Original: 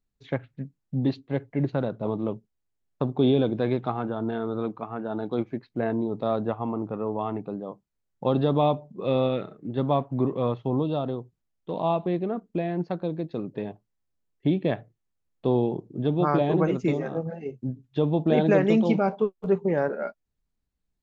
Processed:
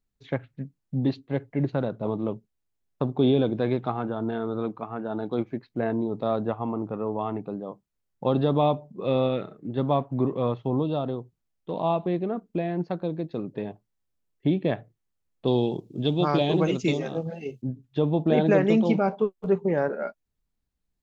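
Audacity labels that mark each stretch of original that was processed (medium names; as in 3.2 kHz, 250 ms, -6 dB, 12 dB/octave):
15.470000	17.620000	resonant high shelf 2.3 kHz +10 dB, Q 1.5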